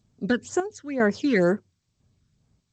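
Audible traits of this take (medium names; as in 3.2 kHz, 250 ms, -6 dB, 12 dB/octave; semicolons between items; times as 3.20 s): phasing stages 12, 2.1 Hz, lowest notch 750–4500 Hz; chopped level 1 Hz, depth 65%, duty 60%; G.722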